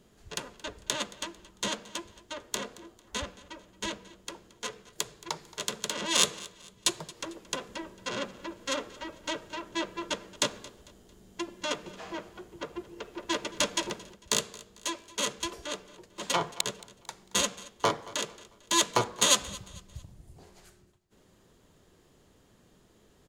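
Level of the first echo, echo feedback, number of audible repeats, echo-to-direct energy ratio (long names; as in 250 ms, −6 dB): −20.0 dB, 38%, 2, −19.5 dB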